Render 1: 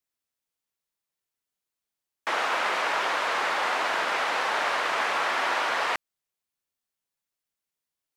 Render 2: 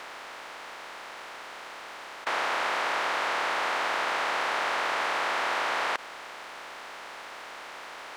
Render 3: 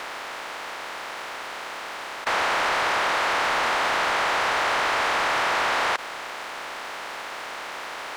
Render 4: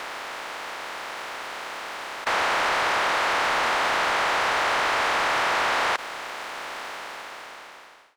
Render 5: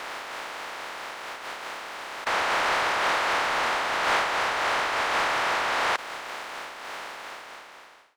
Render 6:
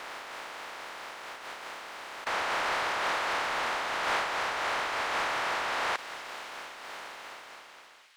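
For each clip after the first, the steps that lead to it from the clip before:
compressor on every frequency bin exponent 0.2; level −7.5 dB
leveller curve on the samples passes 2
fade-out on the ending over 1.37 s
amplitude modulation by smooth noise, depth 60%; level +1.5 dB
delay with a high-pass on its return 264 ms, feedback 81%, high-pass 2,500 Hz, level −15 dB; level −5.5 dB

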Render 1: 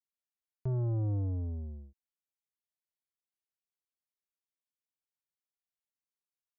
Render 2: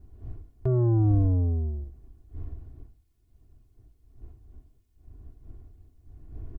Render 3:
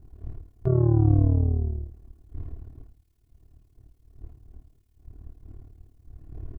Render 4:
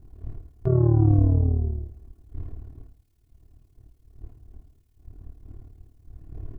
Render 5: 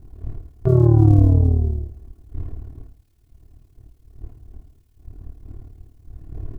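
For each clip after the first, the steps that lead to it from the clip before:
wind on the microphone 88 Hz −54 dBFS; comb filter 2.8 ms, depth 84%; level +8.5 dB
amplitude modulation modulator 37 Hz, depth 65%; level +5.5 dB
hum removal 67.1 Hz, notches 30; level +1.5 dB
gap after every zero crossing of 0.058 ms; level +5.5 dB

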